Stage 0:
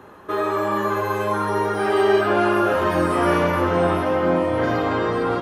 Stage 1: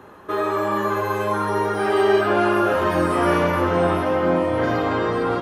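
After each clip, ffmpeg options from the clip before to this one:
ffmpeg -i in.wav -af anull out.wav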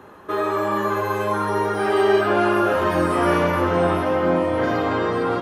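ffmpeg -i in.wav -af "bandreject=frequency=60:width_type=h:width=6,bandreject=frequency=120:width_type=h:width=6" out.wav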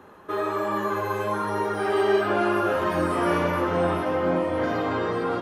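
ffmpeg -i in.wav -af "flanger=delay=3.3:depth=4.8:regen=-69:speed=1.3:shape=triangular" out.wav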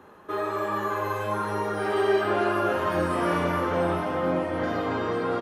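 ffmpeg -i in.wav -af "aecho=1:1:46.65|279.9:0.282|0.316,volume=-2dB" out.wav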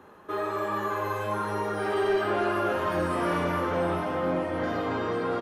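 ffmpeg -i in.wav -af "asoftclip=type=tanh:threshold=-16dB,volume=-1dB" out.wav

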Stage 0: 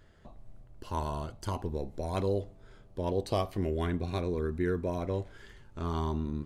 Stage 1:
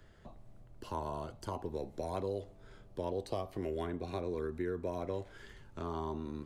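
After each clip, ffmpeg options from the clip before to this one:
ffmpeg -i in.wav -filter_complex "[0:a]acrossover=split=94|310|1000[link_01][link_02][link_03][link_04];[link_01]acompressor=threshold=-52dB:ratio=4[link_05];[link_02]acompressor=threshold=-47dB:ratio=4[link_06];[link_03]acompressor=threshold=-35dB:ratio=4[link_07];[link_04]acompressor=threshold=-51dB:ratio=4[link_08];[link_05][link_06][link_07][link_08]amix=inputs=4:normalize=0" out.wav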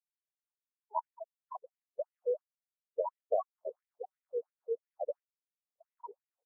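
ffmpeg -i in.wav -af "afftfilt=real='re*gte(hypot(re,im),0.0562)':imag='im*gte(hypot(re,im),0.0562)':win_size=1024:overlap=0.75,afftfilt=real='re*between(b*sr/1024,600*pow(2700/600,0.5+0.5*sin(2*PI*2.9*pts/sr))/1.41,600*pow(2700/600,0.5+0.5*sin(2*PI*2.9*pts/sr))*1.41)':imag='im*between(b*sr/1024,600*pow(2700/600,0.5+0.5*sin(2*PI*2.9*pts/sr))/1.41,600*pow(2700/600,0.5+0.5*sin(2*PI*2.9*pts/sr))*1.41)':win_size=1024:overlap=0.75,volume=9.5dB" out.wav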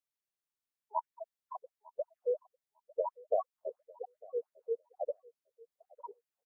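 ffmpeg -i in.wav -af "aecho=1:1:901|1802:0.0708|0.0106" out.wav

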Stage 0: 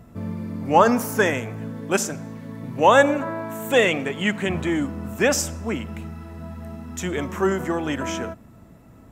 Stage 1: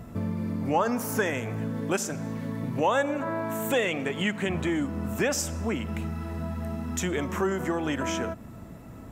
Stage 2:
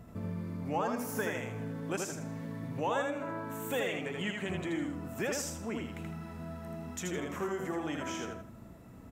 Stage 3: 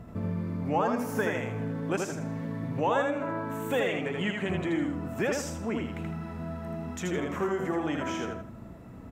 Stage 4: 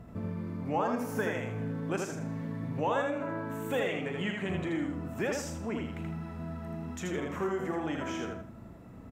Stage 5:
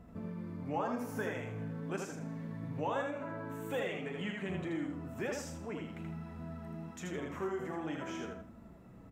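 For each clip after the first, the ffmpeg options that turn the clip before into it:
ffmpeg -i in.wav -af "acompressor=threshold=-33dB:ratio=2.5,volume=4.5dB" out.wav
ffmpeg -i in.wav -af "aecho=1:1:80|160|240|320:0.668|0.18|0.0487|0.0132,volume=-9dB" out.wav
ffmpeg -i in.wav -af "highshelf=frequency=4400:gain=-10,volume=6dB" out.wav
ffmpeg -i in.wav -filter_complex "[0:a]asplit=2[link_01][link_02];[link_02]adelay=37,volume=-12dB[link_03];[link_01][link_03]amix=inputs=2:normalize=0,volume=-3.5dB" out.wav
ffmpeg -i in.wav -af "flanger=delay=3.8:depth=4.6:regen=-53:speed=0.47:shape=triangular,volume=-1.5dB" out.wav

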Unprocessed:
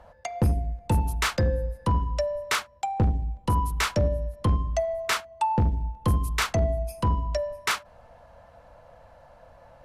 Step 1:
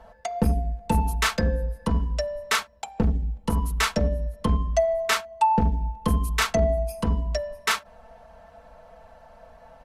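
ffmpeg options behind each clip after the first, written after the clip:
ffmpeg -i in.wav -af "aecho=1:1:4.5:0.83" out.wav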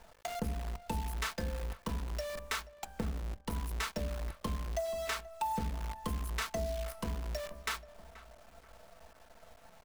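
ffmpeg -i in.wav -filter_complex "[0:a]acrusher=bits=6:dc=4:mix=0:aa=0.000001,acompressor=threshold=-33dB:ratio=2,asplit=2[link_01][link_02];[link_02]adelay=481,lowpass=frequency=1700:poles=1,volume=-16dB,asplit=2[link_03][link_04];[link_04]adelay=481,lowpass=frequency=1700:poles=1,volume=0.47,asplit=2[link_05][link_06];[link_06]adelay=481,lowpass=frequency=1700:poles=1,volume=0.47,asplit=2[link_07][link_08];[link_08]adelay=481,lowpass=frequency=1700:poles=1,volume=0.47[link_09];[link_01][link_03][link_05][link_07][link_09]amix=inputs=5:normalize=0,volume=-6dB" out.wav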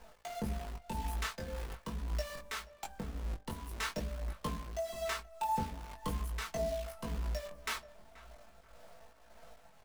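ffmpeg -i in.wav -af "flanger=delay=18:depth=3.6:speed=0.44,tremolo=f=1.8:d=0.46,flanger=delay=3.7:depth=6.3:regen=-54:speed=0.95:shape=triangular,volume=7.5dB" out.wav

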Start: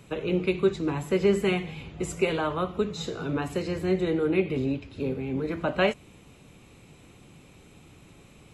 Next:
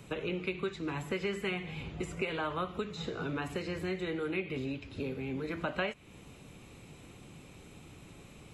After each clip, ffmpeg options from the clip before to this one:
ffmpeg -i in.wav -filter_complex "[0:a]acrossover=split=1300|3200[link_01][link_02][link_03];[link_01]acompressor=threshold=-35dB:ratio=4[link_04];[link_02]acompressor=threshold=-36dB:ratio=4[link_05];[link_03]acompressor=threshold=-55dB:ratio=4[link_06];[link_04][link_05][link_06]amix=inputs=3:normalize=0" out.wav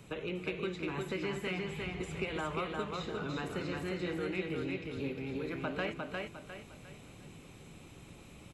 ffmpeg -i in.wav -af "asoftclip=type=tanh:threshold=-22dB,aecho=1:1:354|708|1062|1416|1770:0.708|0.262|0.0969|0.0359|0.0133,volume=-2.5dB" out.wav

